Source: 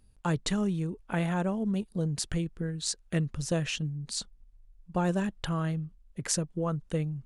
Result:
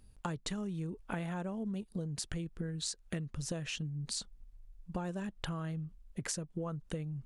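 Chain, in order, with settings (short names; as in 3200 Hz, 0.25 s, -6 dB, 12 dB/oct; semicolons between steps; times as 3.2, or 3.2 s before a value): compressor 10:1, threshold -37 dBFS, peak gain reduction 14 dB; gain +2 dB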